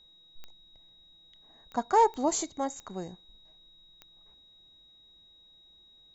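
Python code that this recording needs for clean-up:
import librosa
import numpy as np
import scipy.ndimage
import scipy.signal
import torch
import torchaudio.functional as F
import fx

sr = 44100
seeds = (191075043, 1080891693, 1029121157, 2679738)

y = fx.fix_declick_ar(x, sr, threshold=10.0)
y = fx.notch(y, sr, hz=3800.0, q=30.0)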